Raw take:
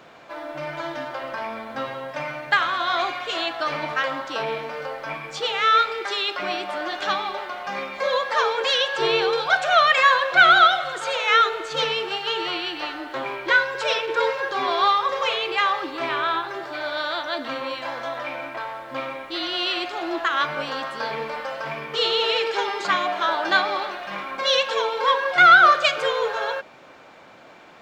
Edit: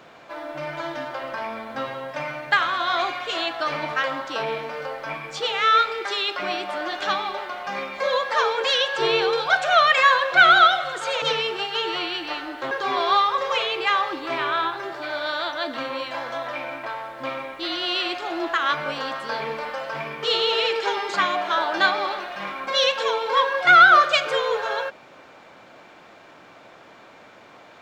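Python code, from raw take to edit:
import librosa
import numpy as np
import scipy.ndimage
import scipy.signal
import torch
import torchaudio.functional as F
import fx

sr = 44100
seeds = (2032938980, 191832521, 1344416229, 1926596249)

y = fx.edit(x, sr, fx.cut(start_s=11.22, length_s=0.52),
    fx.cut(start_s=13.23, length_s=1.19), tone=tone)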